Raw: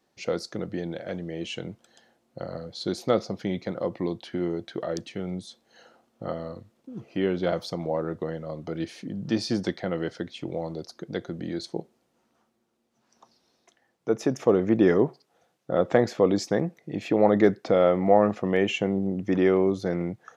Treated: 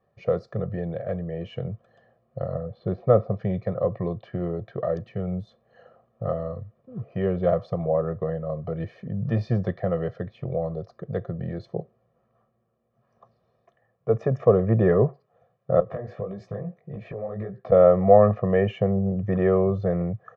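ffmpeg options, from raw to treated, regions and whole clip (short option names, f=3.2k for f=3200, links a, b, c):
-filter_complex "[0:a]asettb=1/sr,asplit=3[a][b][c];[a]atrim=end=2.544[d];[b]atrim=start=2.54:end=3.32,asetpts=PTS-STARTPTS,afade=t=in:d=0.004:c=qsin,afade=t=out:st=0.776:d=0.004:c=qsin,lowpass=3.5k,aemphasis=mode=reproduction:type=75fm[e];[c]atrim=start=3.316[f];[d][e]acrossfade=d=0.004:c1=hsin:c2=qsin[g];[g][f]acrossfade=d=0.004:c1=qsin:c2=hsin,asettb=1/sr,asplit=3[h][i][j];[h]atrim=end=15.804[k];[i]atrim=start=15.8:end=17.72,asetpts=PTS-STARTPTS,afade=t=in:d=0.004:c=qsin,afade=t=out:st=1.916:d=0.004:c=qsin,acompressor=threshold=-28dB:ratio=8:attack=3.2:release=140:knee=1:detection=peak,flanger=delay=15:depth=7.7:speed=1.7[l];[j]atrim=start=17.716[m];[k][l]acrossfade=d=0.004:c1=hsin:c2=qsin[n];[n][m]acrossfade=d=0.004:c1=qsin:c2=hsin,lowpass=1.3k,equalizer=f=110:t=o:w=0.81:g=10,aecho=1:1:1.7:1"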